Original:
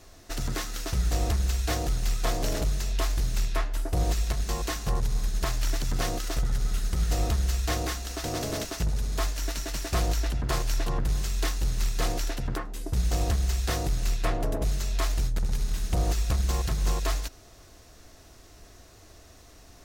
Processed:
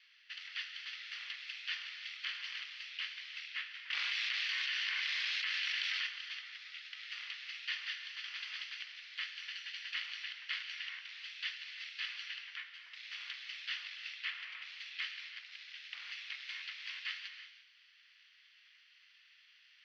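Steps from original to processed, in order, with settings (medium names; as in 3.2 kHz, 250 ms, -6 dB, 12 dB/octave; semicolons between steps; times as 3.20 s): comb filter that takes the minimum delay 0.65 ms; Chebyshev band-pass 2.1–5.5 kHz, order 3; distance through air 490 m; gated-style reverb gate 380 ms flat, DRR 6.5 dB; 3.90–6.07 s: level flattener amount 100%; trim +10 dB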